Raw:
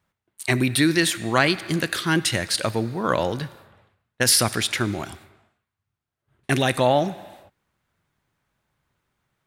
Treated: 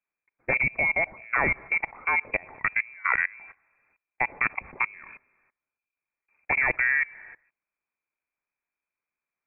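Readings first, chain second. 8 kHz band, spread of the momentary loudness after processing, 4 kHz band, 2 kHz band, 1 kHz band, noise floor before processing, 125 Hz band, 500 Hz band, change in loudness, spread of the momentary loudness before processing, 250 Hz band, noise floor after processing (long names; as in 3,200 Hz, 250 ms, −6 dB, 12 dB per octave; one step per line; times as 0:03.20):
below −40 dB, 8 LU, below −40 dB, +2.5 dB, −5.0 dB, −84 dBFS, −18.0 dB, −13.0 dB, −3.5 dB, 14 LU, −20.0 dB, below −85 dBFS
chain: voice inversion scrambler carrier 2,500 Hz
output level in coarse steps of 23 dB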